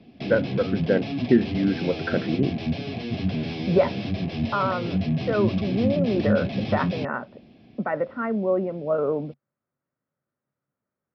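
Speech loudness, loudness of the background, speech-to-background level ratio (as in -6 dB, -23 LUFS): -26.0 LUFS, -28.5 LUFS, 2.5 dB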